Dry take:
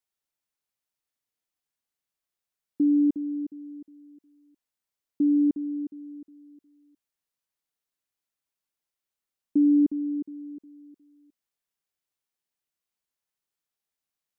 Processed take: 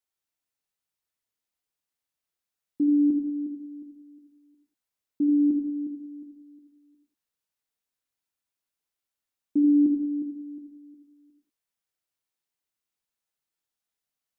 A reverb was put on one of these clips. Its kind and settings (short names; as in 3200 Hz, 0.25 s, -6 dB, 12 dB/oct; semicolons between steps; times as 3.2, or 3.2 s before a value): non-linear reverb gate 0.21 s flat, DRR 2.5 dB; gain -2 dB